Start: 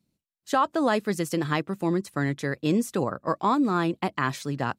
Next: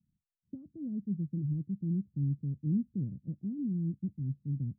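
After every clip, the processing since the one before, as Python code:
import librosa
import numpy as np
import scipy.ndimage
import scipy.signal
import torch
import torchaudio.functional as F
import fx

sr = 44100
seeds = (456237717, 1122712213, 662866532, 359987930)

y = scipy.signal.sosfilt(scipy.signal.cheby2(4, 70, 880.0, 'lowpass', fs=sr, output='sos'), x)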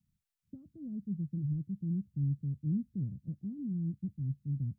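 y = fx.peak_eq(x, sr, hz=360.0, db=-10.0, octaves=2.4)
y = y * 10.0 ** (4.0 / 20.0)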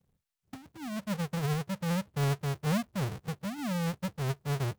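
y = fx.halfwave_hold(x, sr)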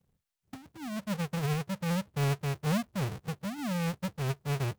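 y = fx.rattle_buzz(x, sr, strikes_db=-31.0, level_db=-37.0)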